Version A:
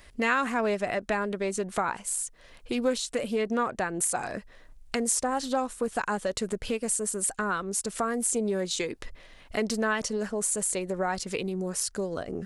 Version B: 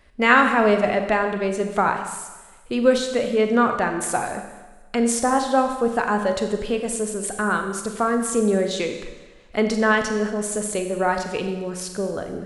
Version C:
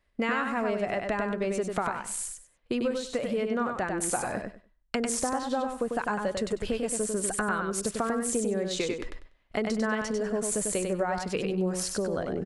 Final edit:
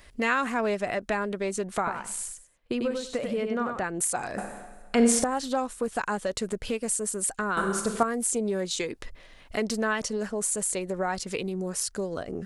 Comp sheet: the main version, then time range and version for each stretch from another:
A
1.87–3.84 from C
4.38–5.24 from B
7.57–8.03 from B

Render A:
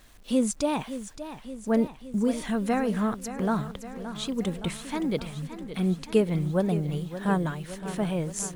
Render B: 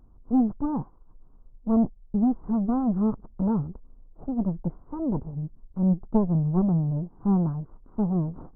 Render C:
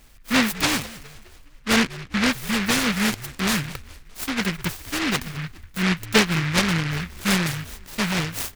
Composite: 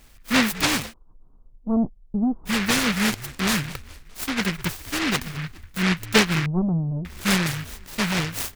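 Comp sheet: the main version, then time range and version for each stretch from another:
C
0.91–2.48 from B, crossfade 0.06 s
6.46–7.05 from B
not used: A

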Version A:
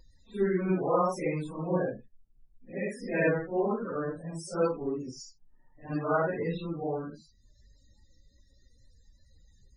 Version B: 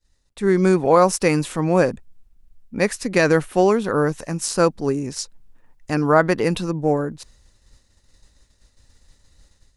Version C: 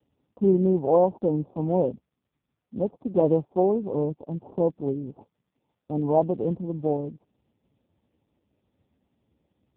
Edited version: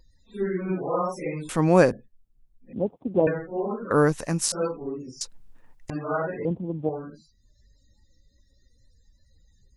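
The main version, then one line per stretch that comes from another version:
A
1.49–1.93 from B
2.73–3.27 from C
3.91–4.52 from B
5.21–5.9 from B
6.45–6.89 from C

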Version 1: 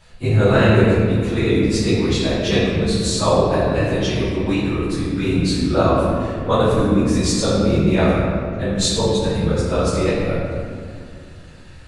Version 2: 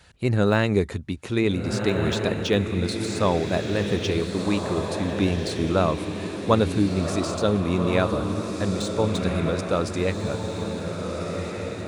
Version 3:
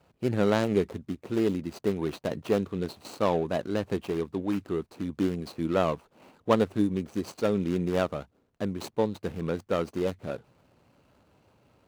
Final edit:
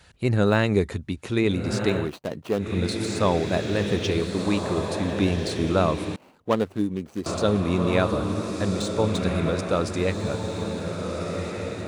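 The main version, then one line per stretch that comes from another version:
2
2.03–2.64 from 3, crossfade 0.16 s
6.16–7.26 from 3
not used: 1

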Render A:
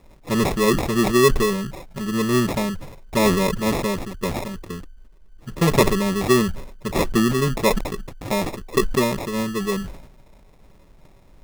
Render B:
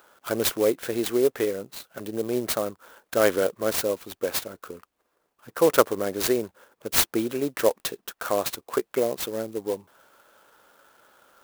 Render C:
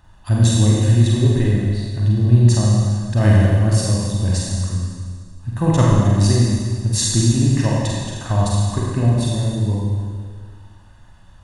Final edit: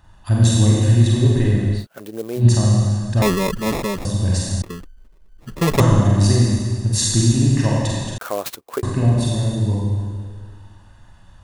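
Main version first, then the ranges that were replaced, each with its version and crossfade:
C
1.82–2.41 from B, crossfade 0.10 s
3.22–4.05 from A
4.62–5.8 from A
8.18–8.83 from B

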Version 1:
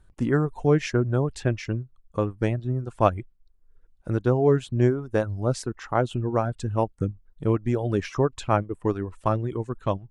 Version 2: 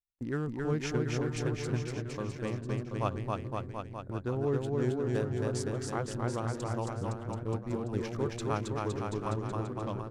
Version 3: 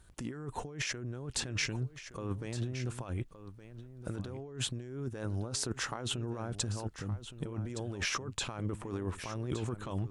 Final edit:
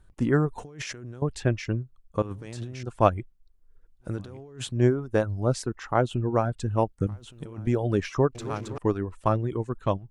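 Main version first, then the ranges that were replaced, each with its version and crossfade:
1
0.58–1.22 from 3
2.22–2.83 from 3
4.11–4.74 from 3, crossfade 0.24 s
7.07–7.67 from 3
8.35–8.78 from 2

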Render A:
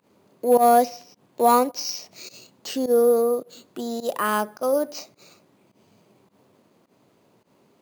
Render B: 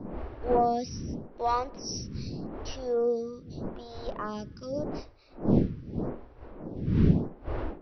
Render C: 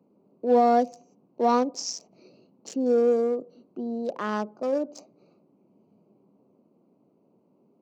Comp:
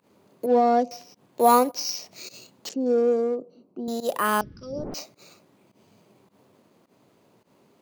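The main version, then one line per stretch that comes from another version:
A
0.46–0.91 from C
2.69–3.88 from C
4.41–4.94 from B

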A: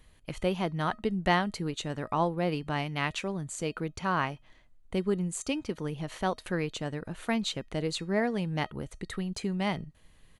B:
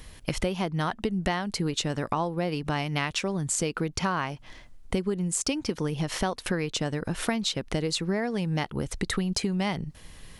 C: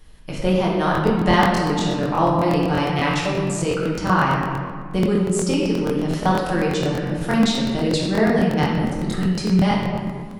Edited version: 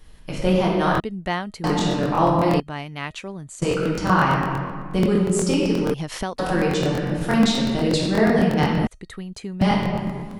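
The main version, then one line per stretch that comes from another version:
C
1–1.64 from A
2.6–3.62 from A
5.94–6.39 from B
8.87–9.61 from A

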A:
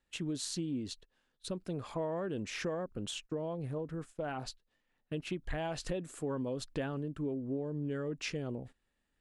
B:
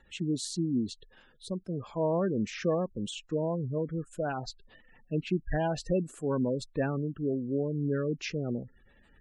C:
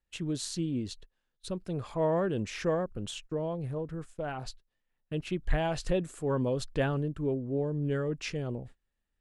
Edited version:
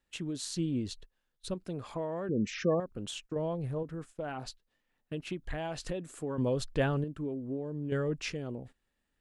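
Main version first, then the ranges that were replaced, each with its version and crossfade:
A
0.57–1.54 from C
2.29–2.8 from B
3.36–3.83 from C
6.38–7.04 from C
7.92–8.32 from C

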